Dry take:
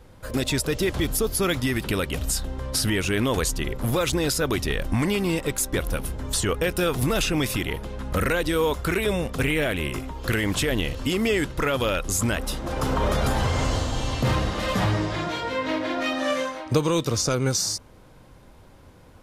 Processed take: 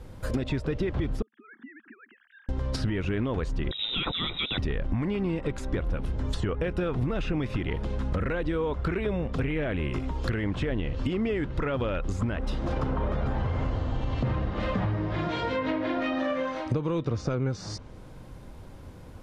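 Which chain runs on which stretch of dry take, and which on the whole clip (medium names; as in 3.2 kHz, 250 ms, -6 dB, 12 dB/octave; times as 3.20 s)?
1.22–2.49 s: formants replaced by sine waves + compression 2.5:1, threshold -44 dBFS + two resonant band-passes 610 Hz, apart 2.9 oct
3.71–4.58 s: band-stop 2.1 kHz, Q 9.2 + frequency inversion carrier 3.8 kHz
whole clip: low-pass that closes with the level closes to 2.3 kHz, closed at -21.5 dBFS; bass shelf 380 Hz +6.5 dB; compression, threshold -25 dBFS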